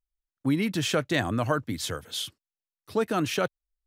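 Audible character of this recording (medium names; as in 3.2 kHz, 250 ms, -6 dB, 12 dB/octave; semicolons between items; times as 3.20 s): noise floor -94 dBFS; spectral tilt -4.5 dB/octave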